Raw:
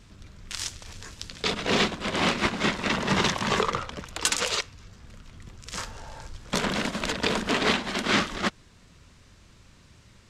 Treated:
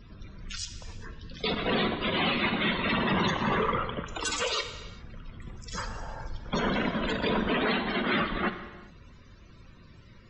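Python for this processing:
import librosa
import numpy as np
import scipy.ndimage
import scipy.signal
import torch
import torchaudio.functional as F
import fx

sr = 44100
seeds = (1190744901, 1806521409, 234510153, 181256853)

y = fx.peak_eq(x, sr, hz=3500.0, db=5.0, octaves=1.6, at=(2.02, 3.12))
y = np.clip(10.0 ** (25.0 / 20.0) * y, -1.0, 1.0) / 10.0 ** (25.0 / 20.0)
y = fx.spec_topn(y, sr, count=64)
y = fx.air_absorb(y, sr, metres=310.0, at=(0.65, 1.34))
y = fx.rev_gated(y, sr, seeds[0], gate_ms=440, shape='falling', drr_db=7.5)
y = y * 10.0 ** (2.5 / 20.0)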